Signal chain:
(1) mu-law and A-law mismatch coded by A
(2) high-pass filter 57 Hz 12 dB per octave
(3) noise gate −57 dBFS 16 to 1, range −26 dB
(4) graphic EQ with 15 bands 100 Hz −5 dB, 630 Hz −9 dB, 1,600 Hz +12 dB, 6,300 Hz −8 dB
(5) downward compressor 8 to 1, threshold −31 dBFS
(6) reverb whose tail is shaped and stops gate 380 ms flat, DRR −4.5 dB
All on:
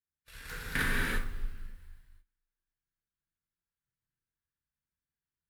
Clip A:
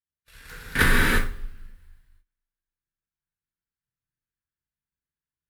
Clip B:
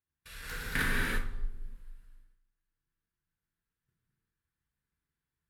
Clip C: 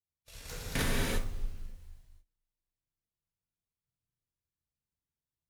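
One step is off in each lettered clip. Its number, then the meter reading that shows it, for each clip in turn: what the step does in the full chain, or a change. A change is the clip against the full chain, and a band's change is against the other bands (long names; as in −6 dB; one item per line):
5, average gain reduction 2.5 dB
1, distortion level −27 dB
4, change in crest factor −2.5 dB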